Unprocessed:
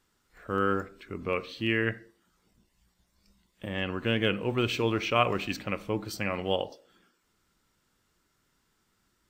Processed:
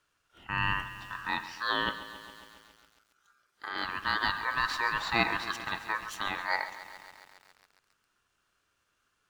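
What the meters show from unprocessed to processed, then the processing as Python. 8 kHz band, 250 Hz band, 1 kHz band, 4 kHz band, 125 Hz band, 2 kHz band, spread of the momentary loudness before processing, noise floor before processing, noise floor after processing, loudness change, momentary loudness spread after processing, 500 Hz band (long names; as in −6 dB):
−1.0 dB, −11.0 dB, +2.0 dB, 0.0 dB, −10.0 dB, +3.0 dB, 11 LU, −74 dBFS, −77 dBFS, −1.5 dB, 17 LU, −13.0 dB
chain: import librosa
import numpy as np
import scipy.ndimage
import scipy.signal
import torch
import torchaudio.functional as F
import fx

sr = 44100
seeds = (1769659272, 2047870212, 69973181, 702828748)

y = scipy.ndimage.median_filter(x, 3, mode='constant')
y = y * np.sin(2.0 * np.pi * 1400.0 * np.arange(len(y)) / sr)
y = fx.echo_crushed(y, sr, ms=137, feedback_pct=80, bits=8, wet_db=-14.0)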